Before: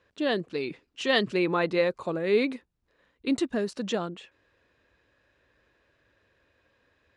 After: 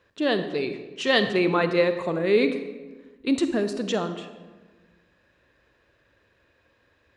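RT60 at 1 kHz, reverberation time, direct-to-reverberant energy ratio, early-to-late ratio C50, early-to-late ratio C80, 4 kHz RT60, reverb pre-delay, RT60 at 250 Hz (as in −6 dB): 1.2 s, 1.3 s, 9.0 dB, 9.5 dB, 11.0 dB, 0.80 s, 37 ms, 1.7 s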